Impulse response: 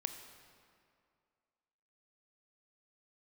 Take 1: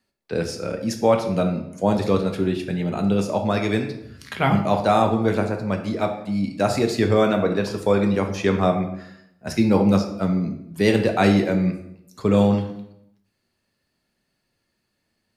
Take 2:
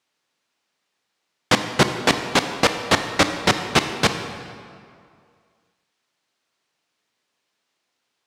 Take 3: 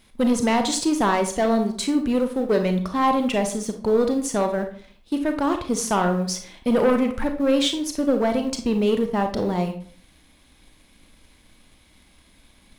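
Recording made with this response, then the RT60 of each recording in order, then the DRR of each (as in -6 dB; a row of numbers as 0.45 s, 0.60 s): 2; 0.75 s, 2.3 s, 0.50 s; 3.5 dB, 7.0 dB, 5.5 dB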